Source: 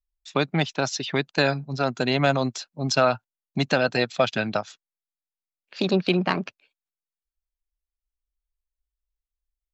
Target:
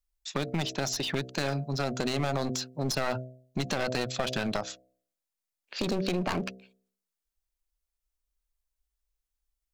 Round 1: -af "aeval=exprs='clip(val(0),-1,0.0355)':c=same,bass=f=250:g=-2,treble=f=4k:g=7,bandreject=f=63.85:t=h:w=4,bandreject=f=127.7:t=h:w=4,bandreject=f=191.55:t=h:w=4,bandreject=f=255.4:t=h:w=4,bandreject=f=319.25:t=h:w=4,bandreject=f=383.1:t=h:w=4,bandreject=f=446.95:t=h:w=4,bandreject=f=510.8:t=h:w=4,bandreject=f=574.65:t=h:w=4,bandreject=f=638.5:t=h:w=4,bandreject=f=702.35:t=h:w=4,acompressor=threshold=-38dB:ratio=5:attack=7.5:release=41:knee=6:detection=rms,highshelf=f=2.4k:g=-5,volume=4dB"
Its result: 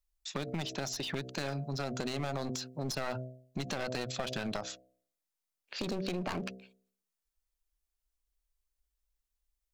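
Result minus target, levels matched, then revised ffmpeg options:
compressor: peak gain reduction +6.5 dB
-af "aeval=exprs='clip(val(0),-1,0.0355)':c=same,bass=f=250:g=-2,treble=f=4k:g=7,bandreject=f=63.85:t=h:w=4,bandreject=f=127.7:t=h:w=4,bandreject=f=191.55:t=h:w=4,bandreject=f=255.4:t=h:w=4,bandreject=f=319.25:t=h:w=4,bandreject=f=383.1:t=h:w=4,bandreject=f=446.95:t=h:w=4,bandreject=f=510.8:t=h:w=4,bandreject=f=574.65:t=h:w=4,bandreject=f=638.5:t=h:w=4,bandreject=f=702.35:t=h:w=4,acompressor=threshold=-30dB:ratio=5:attack=7.5:release=41:knee=6:detection=rms,highshelf=f=2.4k:g=-5,volume=4dB"

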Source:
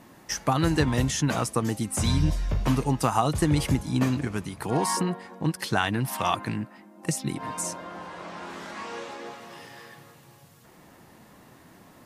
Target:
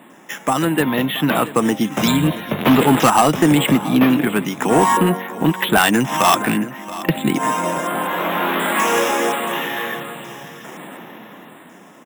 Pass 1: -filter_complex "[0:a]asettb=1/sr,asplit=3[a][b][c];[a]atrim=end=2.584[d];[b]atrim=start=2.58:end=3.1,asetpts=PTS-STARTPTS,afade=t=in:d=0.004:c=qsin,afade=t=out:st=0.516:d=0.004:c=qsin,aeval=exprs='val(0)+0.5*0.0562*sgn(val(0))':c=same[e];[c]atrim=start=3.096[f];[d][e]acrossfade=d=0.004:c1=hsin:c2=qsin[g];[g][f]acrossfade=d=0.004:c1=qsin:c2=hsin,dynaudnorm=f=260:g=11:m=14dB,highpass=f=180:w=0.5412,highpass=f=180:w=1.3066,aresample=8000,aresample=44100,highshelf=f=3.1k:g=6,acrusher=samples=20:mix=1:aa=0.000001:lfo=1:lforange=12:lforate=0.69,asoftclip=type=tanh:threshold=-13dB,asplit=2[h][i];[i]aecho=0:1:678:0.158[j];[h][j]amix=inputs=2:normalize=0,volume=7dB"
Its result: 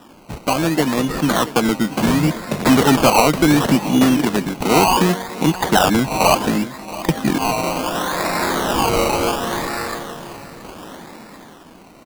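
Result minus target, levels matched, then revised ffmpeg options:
decimation with a swept rate: distortion +15 dB
-filter_complex "[0:a]asettb=1/sr,asplit=3[a][b][c];[a]atrim=end=2.584[d];[b]atrim=start=2.58:end=3.1,asetpts=PTS-STARTPTS,afade=t=in:d=0.004:c=qsin,afade=t=out:st=0.516:d=0.004:c=qsin,aeval=exprs='val(0)+0.5*0.0562*sgn(val(0))':c=same[e];[c]atrim=start=3.096[f];[d][e]acrossfade=d=0.004:c1=hsin:c2=qsin[g];[g][f]acrossfade=d=0.004:c1=qsin:c2=hsin,dynaudnorm=f=260:g=11:m=14dB,highpass=f=180:w=0.5412,highpass=f=180:w=1.3066,aresample=8000,aresample=44100,highshelf=f=3.1k:g=6,acrusher=samples=4:mix=1:aa=0.000001:lfo=1:lforange=2.4:lforate=0.69,asoftclip=type=tanh:threshold=-13dB,asplit=2[h][i];[i]aecho=0:1:678:0.158[j];[h][j]amix=inputs=2:normalize=0,volume=7dB"

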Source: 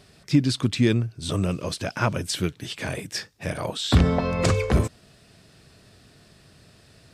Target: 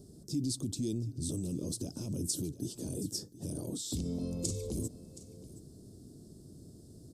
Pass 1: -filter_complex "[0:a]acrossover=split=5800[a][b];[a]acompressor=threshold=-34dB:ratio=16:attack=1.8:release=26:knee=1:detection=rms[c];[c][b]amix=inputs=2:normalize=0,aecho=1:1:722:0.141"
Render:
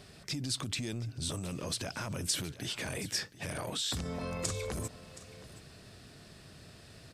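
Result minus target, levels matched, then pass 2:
250 Hz band -6.0 dB
-filter_complex "[0:a]acrossover=split=5800[a][b];[a]acompressor=threshold=-34dB:ratio=16:attack=1.8:release=26:knee=1:detection=rms,lowpass=f=320:t=q:w=2.2[c];[c][b]amix=inputs=2:normalize=0,aecho=1:1:722:0.141"

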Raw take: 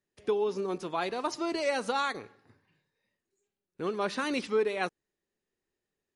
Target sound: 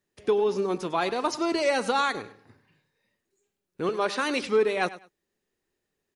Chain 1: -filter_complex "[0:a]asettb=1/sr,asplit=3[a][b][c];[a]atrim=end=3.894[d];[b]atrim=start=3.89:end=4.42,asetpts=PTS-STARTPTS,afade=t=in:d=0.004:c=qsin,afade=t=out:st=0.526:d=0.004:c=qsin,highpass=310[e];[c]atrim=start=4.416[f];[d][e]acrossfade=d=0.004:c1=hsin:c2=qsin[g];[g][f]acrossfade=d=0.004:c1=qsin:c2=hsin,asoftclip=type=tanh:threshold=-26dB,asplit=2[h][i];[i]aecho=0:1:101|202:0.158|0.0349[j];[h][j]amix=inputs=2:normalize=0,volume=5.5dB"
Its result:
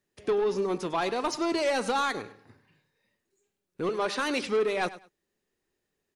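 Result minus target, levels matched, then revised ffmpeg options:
soft clip: distortion +16 dB
-filter_complex "[0:a]asettb=1/sr,asplit=3[a][b][c];[a]atrim=end=3.894[d];[b]atrim=start=3.89:end=4.42,asetpts=PTS-STARTPTS,afade=t=in:d=0.004:c=qsin,afade=t=out:st=0.526:d=0.004:c=qsin,highpass=310[e];[c]atrim=start=4.416[f];[d][e]acrossfade=d=0.004:c1=hsin:c2=qsin[g];[g][f]acrossfade=d=0.004:c1=qsin:c2=hsin,asoftclip=type=tanh:threshold=-15dB,asplit=2[h][i];[i]aecho=0:1:101|202:0.158|0.0349[j];[h][j]amix=inputs=2:normalize=0,volume=5.5dB"

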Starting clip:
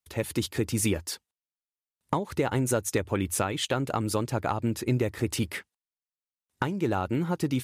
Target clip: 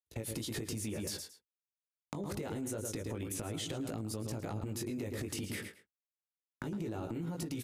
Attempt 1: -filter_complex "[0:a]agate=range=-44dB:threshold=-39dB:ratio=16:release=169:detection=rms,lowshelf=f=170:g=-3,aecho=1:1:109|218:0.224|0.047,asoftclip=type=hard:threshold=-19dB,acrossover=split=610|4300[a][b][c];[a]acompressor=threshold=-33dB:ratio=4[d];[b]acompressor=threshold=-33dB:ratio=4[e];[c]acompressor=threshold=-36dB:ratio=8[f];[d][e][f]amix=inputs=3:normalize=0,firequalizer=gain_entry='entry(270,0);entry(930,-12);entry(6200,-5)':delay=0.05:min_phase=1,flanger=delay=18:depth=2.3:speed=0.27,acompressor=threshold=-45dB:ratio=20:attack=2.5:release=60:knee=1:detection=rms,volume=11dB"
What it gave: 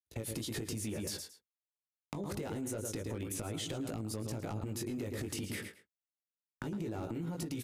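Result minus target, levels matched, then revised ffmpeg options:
hard clip: distortion +28 dB
-filter_complex "[0:a]agate=range=-44dB:threshold=-39dB:ratio=16:release=169:detection=rms,lowshelf=f=170:g=-3,aecho=1:1:109|218:0.224|0.047,asoftclip=type=hard:threshold=-12.5dB,acrossover=split=610|4300[a][b][c];[a]acompressor=threshold=-33dB:ratio=4[d];[b]acompressor=threshold=-33dB:ratio=4[e];[c]acompressor=threshold=-36dB:ratio=8[f];[d][e][f]amix=inputs=3:normalize=0,firequalizer=gain_entry='entry(270,0);entry(930,-12);entry(6200,-5)':delay=0.05:min_phase=1,flanger=delay=18:depth=2.3:speed=0.27,acompressor=threshold=-45dB:ratio=20:attack=2.5:release=60:knee=1:detection=rms,volume=11dB"

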